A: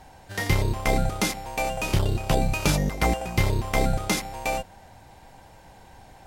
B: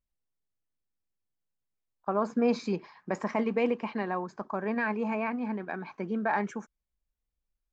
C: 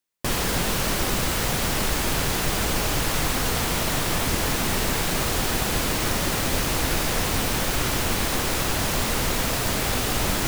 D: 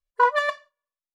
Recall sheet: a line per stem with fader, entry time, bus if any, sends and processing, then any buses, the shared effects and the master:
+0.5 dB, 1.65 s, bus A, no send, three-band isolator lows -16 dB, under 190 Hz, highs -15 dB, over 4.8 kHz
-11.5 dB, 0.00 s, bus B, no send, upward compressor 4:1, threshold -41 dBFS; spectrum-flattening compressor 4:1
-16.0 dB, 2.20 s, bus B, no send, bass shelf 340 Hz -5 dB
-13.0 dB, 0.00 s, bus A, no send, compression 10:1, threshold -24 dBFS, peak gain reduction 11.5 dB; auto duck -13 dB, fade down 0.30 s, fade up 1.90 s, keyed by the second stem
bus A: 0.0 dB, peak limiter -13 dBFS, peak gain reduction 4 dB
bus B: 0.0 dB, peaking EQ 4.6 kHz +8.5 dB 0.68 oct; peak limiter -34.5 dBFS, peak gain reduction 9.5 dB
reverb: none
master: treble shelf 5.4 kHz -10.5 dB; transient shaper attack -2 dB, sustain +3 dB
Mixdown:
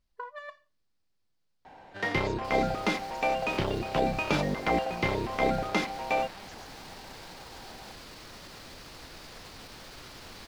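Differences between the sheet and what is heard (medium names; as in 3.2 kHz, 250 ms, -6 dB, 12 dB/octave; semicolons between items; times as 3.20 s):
stem B: missing upward compressor 4:1, threshold -41 dBFS; master: missing transient shaper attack -2 dB, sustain +3 dB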